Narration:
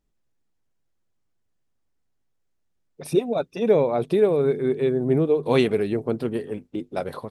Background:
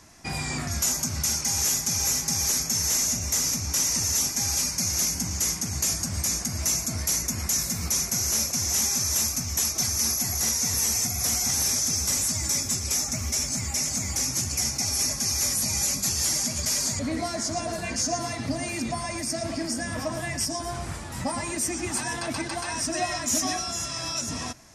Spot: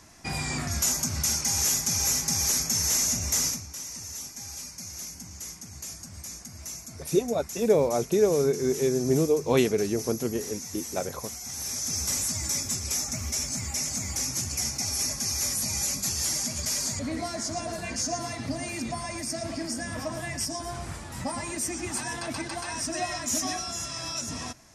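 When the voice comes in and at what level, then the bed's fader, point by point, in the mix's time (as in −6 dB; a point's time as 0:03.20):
4.00 s, −3.0 dB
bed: 0:03.46 −0.5 dB
0:03.69 −13.5 dB
0:11.41 −13.5 dB
0:11.99 −3 dB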